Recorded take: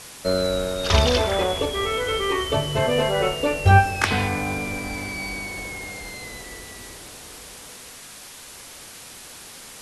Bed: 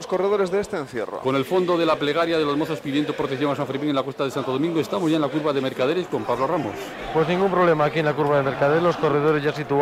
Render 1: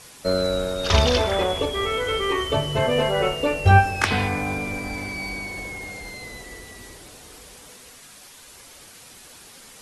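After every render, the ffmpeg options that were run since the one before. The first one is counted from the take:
ffmpeg -i in.wav -af "afftdn=noise_reduction=6:noise_floor=-42" out.wav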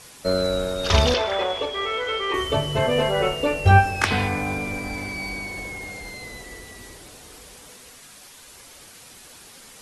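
ffmpeg -i in.wav -filter_complex "[0:a]asettb=1/sr,asplit=3[link_01][link_02][link_03];[link_01]atrim=end=1.144[link_04];[link_02]atrim=start=1.14:end=2.34,asetpts=PTS-STARTPTS,afade=type=in:duration=0.004:curve=qsin,afade=type=out:start_time=1.196:duration=0.004:curve=qsin,acrossover=split=390 6200:gain=0.2 1 0.141[link_05][link_06][link_07];[link_05][link_06][link_07]amix=inputs=3:normalize=0[link_08];[link_03]atrim=start=2.336[link_09];[link_04][link_08]acrossfade=duration=0.004:curve1=hsin:curve2=qsin[link_10];[link_10][link_09]acrossfade=duration=0.004:curve1=qsin:curve2=hsin" out.wav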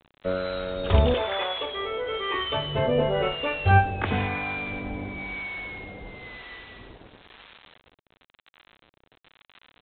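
ffmpeg -i in.wav -filter_complex "[0:a]aresample=8000,acrusher=bits=6:mix=0:aa=0.000001,aresample=44100,acrossover=split=800[link_01][link_02];[link_01]aeval=exprs='val(0)*(1-0.7/2+0.7/2*cos(2*PI*1*n/s))':channel_layout=same[link_03];[link_02]aeval=exprs='val(0)*(1-0.7/2-0.7/2*cos(2*PI*1*n/s))':channel_layout=same[link_04];[link_03][link_04]amix=inputs=2:normalize=0" out.wav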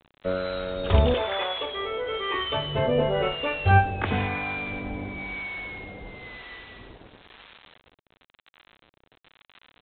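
ffmpeg -i in.wav -af anull out.wav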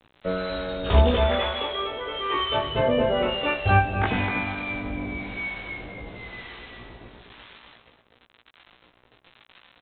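ffmpeg -i in.wav -filter_complex "[0:a]asplit=2[link_01][link_02];[link_02]adelay=17,volume=-2.5dB[link_03];[link_01][link_03]amix=inputs=2:normalize=0,asplit=2[link_04][link_05];[link_05]adelay=245,lowpass=frequency=1700:poles=1,volume=-7.5dB,asplit=2[link_06][link_07];[link_07]adelay=245,lowpass=frequency=1700:poles=1,volume=0.24,asplit=2[link_08][link_09];[link_09]adelay=245,lowpass=frequency=1700:poles=1,volume=0.24[link_10];[link_04][link_06][link_08][link_10]amix=inputs=4:normalize=0" out.wav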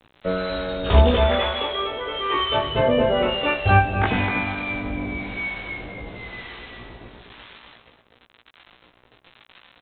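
ffmpeg -i in.wav -af "volume=3dB" out.wav

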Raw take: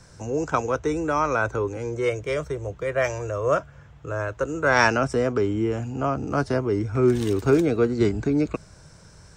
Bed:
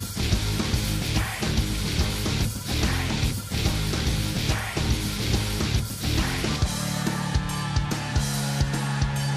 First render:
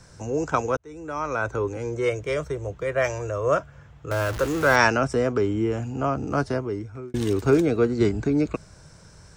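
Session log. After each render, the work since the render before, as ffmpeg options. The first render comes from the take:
ffmpeg -i in.wav -filter_complex "[0:a]asettb=1/sr,asplit=3[link_01][link_02][link_03];[link_01]atrim=end=4.114[link_04];[link_02]atrim=start=4.11:end=4.76,asetpts=PTS-STARTPTS,afade=type=in:duration=0.004:curve=qsin,afade=type=out:start_time=0.646:duration=0.004:curve=qsin,aeval=exprs='val(0)+0.5*0.0473*sgn(val(0))':channel_layout=same[link_05];[link_03]atrim=start=4.756[link_06];[link_04][link_05]acrossfade=duration=0.004:curve1=hsin:curve2=qsin[link_07];[link_07][link_06]acrossfade=duration=0.004:curve1=qsin:curve2=hsin,asplit=3[link_08][link_09][link_10];[link_08]atrim=end=0.77,asetpts=PTS-STARTPTS,afade=type=out:start_time=0.766:duration=0.004:curve=hsin[link_11];[link_09]atrim=start=0.77:end=7.14,asetpts=PTS-STARTPTS,afade=type=in:duration=0.88,afade=type=out:start_time=5.59:duration=0.78[link_12];[link_10]atrim=start=7.14,asetpts=PTS-STARTPTS,afade=type=in:duration=0.004:curve=hsin[link_13];[link_11][link_12][link_13]concat=n=3:v=0:a=1" out.wav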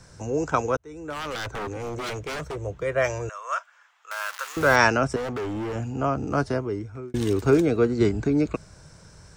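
ffmpeg -i in.wav -filter_complex "[0:a]asettb=1/sr,asplit=3[link_01][link_02][link_03];[link_01]atrim=end=1.104[link_04];[link_02]atrim=start=1.1:end=2.56,asetpts=PTS-STARTPTS,afade=type=in:duration=0.004:curve=qsin,afade=type=out:start_time=1.456:duration=0.004:curve=qsin,aeval=exprs='0.0501*(abs(mod(val(0)/0.0501+3,4)-2)-1)':channel_layout=same[link_05];[link_03]atrim=start=2.556[link_06];[link_04][link_05]acrossfade=duration=0.004:curve1=hsin:curve2=qsin[link_07];[link_07][link_06]acrossfade=duration=0.004:curve1=qsin:curve2=hsin,asettb=1/sr,asplit=3[link_08][link_09][link_10];[link_08]atrim=end=3.294[link_11];[link_09]atrim=start=3.29:end=4.57,asetpts=PTS-STARTPTS,afade=type=in:duration=0.004:curve=qsin,afade=type=out:start_time=1.276:duration=0.004:curve=qsin,highpass=frequency=970:width=0.5412,highpass=frequency=970:width=1.3066[link_12];[link_10]atrim=start=4.566[link_13];[link_11][link_12]acrossfade=duration=0.004:curve1=hsin:curve2=qsin[link_14];[link_14][link_13]acrossfade=duration=0.004:curve1=qsin:curve2=hsin,asettb=1/sr,asplit=3[link_15][link_16][link_17];[link_15]atrim=end=5.164[link_18];[link_16]atrim=start=5.16:end=5.76,asetpts=PTS-STARTPTS,afade=type=in:duration=0.004:curve=qsin,afade=type=out:start_time=0.596:duration=0.004:curve=qsin,asoftclip=type=hard:threshold=-27.5dB[link_19];[link_17]atrim=start=5.756[link_20];[link_18][link_19]acrossfade=duration=0.004:curve1=hsin:curve2=qsin[link_21];[link_21][link_20]acrossfade=duration=0.004:curve1=qsin:curve2=hsin" out.wav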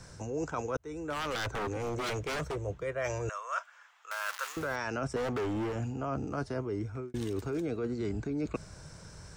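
ffmpeg -i in.wav -af "alimiter=limit=-15.5dB:level=0:latency=1,areverse,acompressor=threshold=-31dB:ratio=6,areverse" out.wav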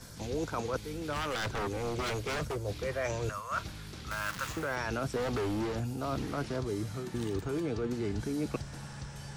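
ffmpeg -i in.wav -i bed.wav -filter_complex "[1:a]volume=-19dB[link_01];[0:a][link_01]amix=inputs=2:normalize=0" out.wav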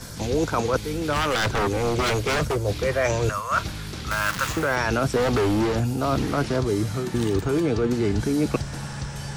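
ffmpeg -i in.wav -af "volume=11dB" out.wav

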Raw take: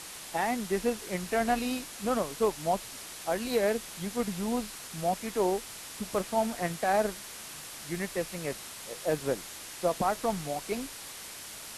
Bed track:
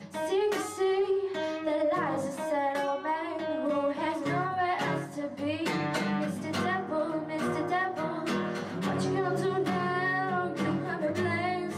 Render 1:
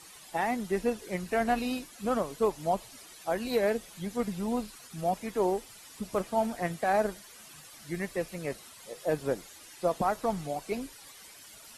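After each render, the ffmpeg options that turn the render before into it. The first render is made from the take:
ffmpeg -i in.wav -af "afftdn=noise_reduction=12:noise_floor=-44" out.wav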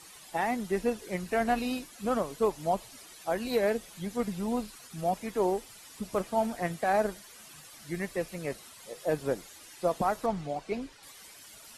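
ffmpeg -i in.wav -filter_complex "[0:a]asettb=1/sr,asplit=3[link_01][link_02][link_03];[link_01]atrim=end=10.264[link_04];[link_02]atrim=start=10.26:end=11.03,asetpts=PTS-STARTPTS,afade=type=in:duration=0.004:curve=qsin,afade=type=out:start_time=0.766:duration=0.004:curve=qsin,adynamicsmooth=sensitivity=3.5:basefreq=5800[link_05];[link_03]atrim=start=11.026[link_06];[link_04][link_05]acrossfade=duration=0.004:curve1=hsin:curve2=qsin[link_07];[link_07][link_06]acrossfade=duration=0.004:curve1=qsin:curve2=hsin" out.wav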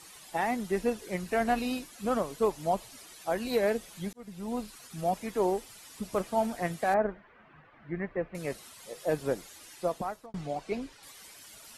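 ffmpeg -i in.wav -filter_complex "[0:a]asettb=1/sr,asplit=3[link_01][link_02][link_03];[link_01]atrim=end=6.944[link_04];[link_02]atrim=start=6.94:end=8.35,asetpts=PTS-STARTPTS,afade=type=in:duration=0.004:curve=qsin,afade=type=out:start_time=1.406:duration=0.004:curve=qsin,lowpass=frequency=2000:width=0.5412,lowpass=frequency=2000:width=1.3066[link_05];[link_03]atrim=start=8.346[link_06];[link_04][link_05]acrossfade=duration=0.004:curve1=hsin:curve2=qsin[link_07];[link_07][link_06]acrossfade=duration=0.004:curve1=qsin:curve2=hsin,asplit=3[link_08][link_09][link_10];[link_08]atrim=end=4.13,asetpts=PTS-STARTPTS,afade=type=out:start_time=4.126:duration=0.004:curve=hsin[link_11];[link_09]atrim=start=4.13:end=10.34,asetpts=PTS-STARTPTS,afade=type=in:duration=0.84:curve=qsin,afade=type=out:start_time=5.6:duration=0.61[link_12];[link_10]atrim=start=10.34,asetpts=PTS-STARTPTS,afade=type=in:duration=0.004:curve=hsin[link_13];[link_11][link_12][link_13]concat=n=3:v=0:a=1" out.wav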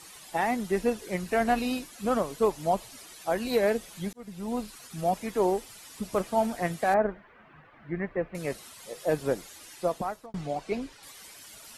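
ffmpeg -i in.wav -af "volume=2.5dB" out.wav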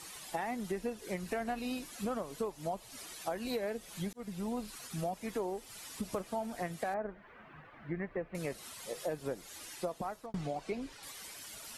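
ffmpeg -i in.wav -af "acompressor=threshold=-34dB:ratio=6" out.wav

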